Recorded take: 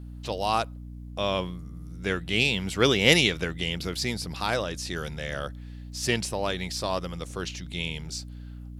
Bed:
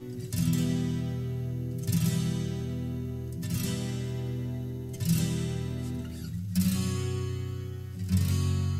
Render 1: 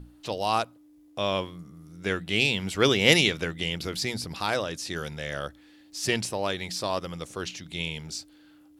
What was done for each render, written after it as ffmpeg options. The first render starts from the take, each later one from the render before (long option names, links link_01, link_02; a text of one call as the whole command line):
ffmpeg -i in.wav -af "bandreject=frequency=60:width_type=h:width=6,bandreject=frequency=120:width_type=h:width=6,bandreject=frequency=180:width_type=h:width=6,bandreject=frequency=240:width_type=h:width=6" out.wav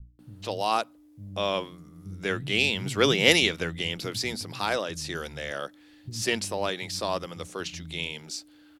ffmpeg -i in.wav -filter_complex "[0:a]acrossover=split=170[link_01][link_02];[link_02]adelay=190[link_03];[link_01][link_03]amix=inputs=2:normalize=0" out.wav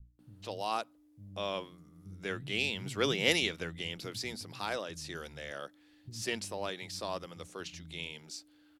ffmpeg -i in.wav -af "volume=-8.5dB" out.wav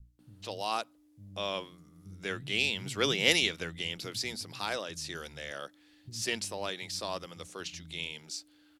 ffmpeg -i in.wav -af "equalizer=frequency=6200:width=0.32:gain=5" out.wav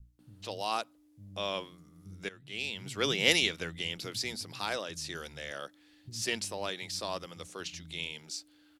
ffmpeg -i in.wav -filter_complex "[0:a]asplit=2[link_01][link_02];[link_01]atrim=end=2.29,asetpts=PTS-STARTPTS,afade=type=out:start_time=2.286:duration=0.004:curve=hsin:silence=0.105925[link_03];[link_02]atrim=start=2.29,asetpts=PTS-STARTPTS,afade=type=in:duration=0.93:silence=0.105925[link_04];[link_03][link_04]concat=n=2:v=0:a=1" out.wav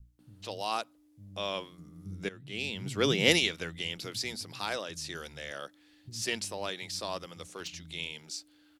ffmpeg -i in.wav -filter_complex "[0:a]asettb=1/sr,asplit=3[link_01][link_02][link_03];[link_01]atrim=end=1.784[link_04];[link_02]atrim=start=1.78:end=3.39,asetpts=PTS-STARTPTS,afade=type=in:duration=0.004:curve=qsin,afade=type=out:start_time=1.606:duration=0.004:curve=qsin,equalizer=frequency=160:width=0.32:gain=7[link_05];[link_03]atrim=start=3.386[link_06];[link_04][link_05]acrossfade=duration=0.004:curve1=hsin:curve2=qsin[link_07];[link_07][link_06]acrossfade=duration=0.004:curve1=qsin:curve2=hsin,asettb=1/sr,asplit=3[link_08][link_09][link_10];[link_08]atrim=end=7.414[link_11];[link_09]atrim=start=7.41:end=7.86,asetpts=PTS-STARTPTS,afade=type=in:duration=0.004:curve=qsin,afade=type=out:start_time=0.446:duration=0.004:curve=qsin,asoftclip=type=hard:threshold=-32.5dB[link_12];[link_10]atrim=start=7.856[link_13];[link_11][link_12]acrossfade=duration=0.004:curve1=hsin:curve2=qsin[link_14];[link_14][link_13]acrossfade=duration=0.004:curve1=qsin:curve2=hsin" out.wav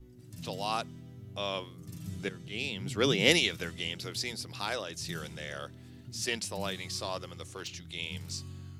ffmpeg -i in.wav -i bed.wav -filter_complex "[1:a]volume=-17dB[link_01];[0:a][link_01]amix=inputs=2:normalize=0" out.wav